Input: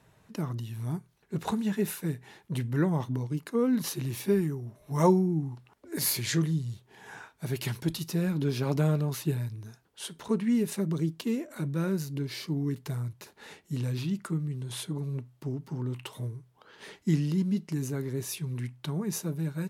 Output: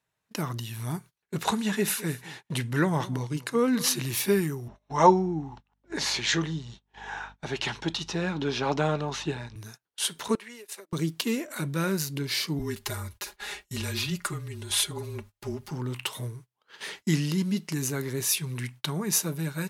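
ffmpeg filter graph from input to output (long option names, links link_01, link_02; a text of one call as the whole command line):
ffmpeg -i in.wav -filter_complex "[0:a]asettb=1/sr,asplit=3[link_01][link_02][link_03];[link_01]atrim=end=1.444[link_04];[link_02]atrim=start=1.44:end=4.02,asetpts=PTS-STARTPTS,afade=type=in:duration=0.004:curve=qsin,afade=type=out:start_time=2.576:duration=0.004:curve=qsin,lowpass=11000,aecho=1:1:210:0.126,atrim=end_sample=113778[link_05];[link_03]atrim=start=4.016[link_06];[link_04][link_05]acrossfade=duration=0.004:curve1=hsin:curve2=qsin[link_07];[link_07][link_06]acrossfade=duration=0.004:curve1=qsin:curve2=hsin,asettb=1/sr,asplit=3[link_08][link_09][link_10];[link_08]atrim=end=4.684[link_11];[link_09]atrim=start=4.68:end=9.56,asetpts=PTS-STARTPTS,afade=type=in:duration=0.004:curve=qsin,afade=type=out:start_time=4.876:duration=0.004:curve=qsin,highpass=190,equalizer=frequency=820:width_type=q:width=4:gain=7,equalizer=frequency=2200:width_type=q:width=4:gain=-4,equalizer=frequency=4700:width_type=q:width=4:gain=-8,lowpass=frequency=5600:width=0.5412,lowpass=frequency=5600:width=1.3066,aeval=exprs='val(0)+0.00282*(sin(2*PI*50*n/s)+sin(2*PI*2*50*n/s)/2+sin(2*PI*3*50*n/s)/3+sin(2*PI*4*50*n/s)/4+sin(2*PI*5*50*n/s)/5)':channel_layout=same[link_12];[link_10]atrim=start=9.556[link_13];[link_11][link_12]acrossfade=duration=0.004:curve1=hsin:curve2=qsin[link_14];[link_14][link_13]acrossfade=duration=0.004:curve1=qsin:curve2=hsin,asettb=1/sr,asplit=3[link_15][link_16][link_17];[link_15]atrim=end=10.354[link_18];[link_16]atrim=start=10.35:end=10.93,asetpts=PTS-STARTPTS,afade=type=in:duration=0.004:curve=qsin,afade=type=out:start_time=0.576:duration=0.004:curve=qsin,highpass=frequency=370:width=0.5412,highpass=frequency=370:width=1.3066,agate=range=-7dB:threshold=-39dB:ratio=16:release=100:detection=peak,acompressor=threshold=-45dB:ratio=12:attack=3.2:release=140:knee=1:detection=peak[link_19];[link_17]atrim=start=10.926[link_20];[link_18][link_19]acrossfade=duration=0.004:curve1=hsin:curve2=qsin[link_21];[link_21][link_20]acrossfade=duration=0.004:curve1=qsin:curve2=hsin,asettb=1/sr,asplit=3[link_22][link_23][link_24];[link_22]atrim=end=12.594[link_25];[link_23]atrim=start=12.59:end=15.71,asetpts=PTS-STARTPTS,afade=type=in:duration=0.004:curve=qsin,afade=type=out:start_time=3.116:duration=0.004:curve=qsin,lowshelf=frequency=110:width_type=q:width=3:gain=12.5,aecho=1:1:4.8:0.75,atrim=end_sample=137592,afreqshift=-24[link_26];[link_24]atrim=start=15.706[link_27];[link_25][link_26]acrossfade=duration=0.004:curve1=hsin:curve2=qsin[link_28];[link_28][link_27]acrossfade=duration=0.004:curve1=qsin:curve2=hsin,tiltshelf=frequency=760:gain=-6,agate=range=-25dB:threshold=-50dB:ratio=16:detection=peak,volume=5.5dB" out.wav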